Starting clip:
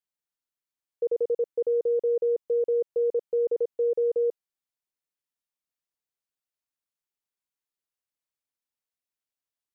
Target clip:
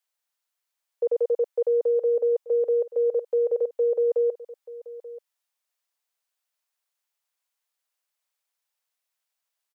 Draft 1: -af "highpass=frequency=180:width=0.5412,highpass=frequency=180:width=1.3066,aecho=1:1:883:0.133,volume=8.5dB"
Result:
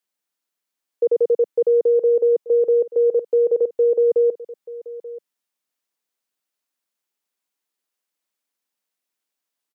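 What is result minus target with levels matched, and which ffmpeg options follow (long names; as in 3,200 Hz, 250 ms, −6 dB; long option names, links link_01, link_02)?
250 Hz band +6.0 dB
-af "highpass=frequency=540:width=0.5412,highpass=frequency=540:width=1.3066,aecho=1:1:883:0.133,volume=8.5dB"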